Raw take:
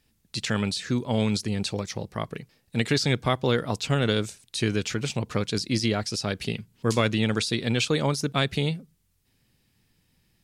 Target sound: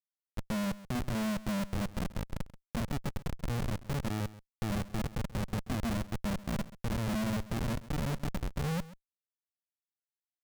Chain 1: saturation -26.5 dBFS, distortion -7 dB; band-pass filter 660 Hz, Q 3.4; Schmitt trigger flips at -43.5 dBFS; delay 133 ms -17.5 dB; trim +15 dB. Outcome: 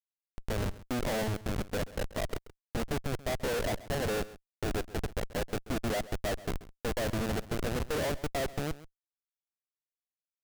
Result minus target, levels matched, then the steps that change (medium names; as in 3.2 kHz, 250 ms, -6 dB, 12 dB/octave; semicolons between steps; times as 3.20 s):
500 Hz band +7.0 dB; saturation: distortion -4 dB
change: saturation -35.5 dBFS, distortion -3 dB; change: band-pass filter 200 Hz, Q 3.4